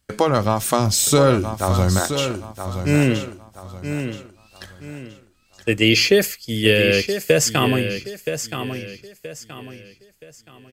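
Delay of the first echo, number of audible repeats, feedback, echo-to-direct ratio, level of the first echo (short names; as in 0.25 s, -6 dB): 0.974 s, 3, 33%, -8.5 dB, -9.0 dB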